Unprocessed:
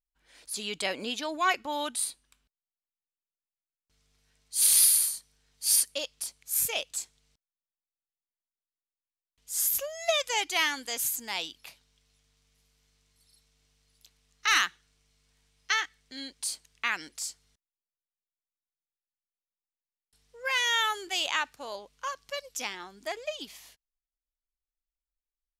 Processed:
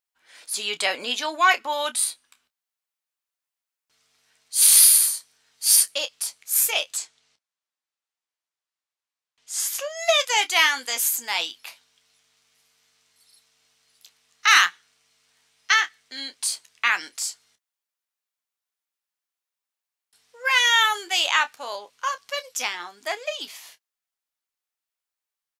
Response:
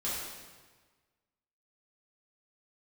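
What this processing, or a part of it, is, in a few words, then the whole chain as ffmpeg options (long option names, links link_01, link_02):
filter by subtraction: -filter_complex "[0:a]asplit=2[link_01][link_02];[link_02]lowpass=1100,volume=-1[link_03];[link_01][link_03]amix=inputs=2:normalize=0,asettb=1/sr,asplit=3[link_04][link_05][link_06];[link_04]atrim=end=6.974[link_07];[link_05]atrim=start=6.97:end=9.97,asetpts=PTS-STARTPTS,afade=type=in:duration=0.004:curve=qsin,afade=type=out:start_time=2.996:duration=0.004:curve=qsin,lowpass=7600[link_08];[link_06]atrim=start=9.966[link_09];[link_07][link_08]acrossfade=duration=0.004:curve1=hsin:curve2=qsin[link_10];[link_10][link_09]acrossfade=duration=0.004:curve1=qsin:curve2=hsin,aecho=1:1:12|29:0.299|0.211,volume=6.5dB"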